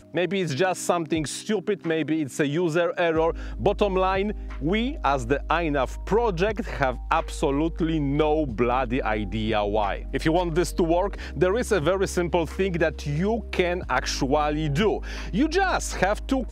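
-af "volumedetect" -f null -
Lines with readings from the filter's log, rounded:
mean_volume: -24.1 dB
max_volume: -5.7 dB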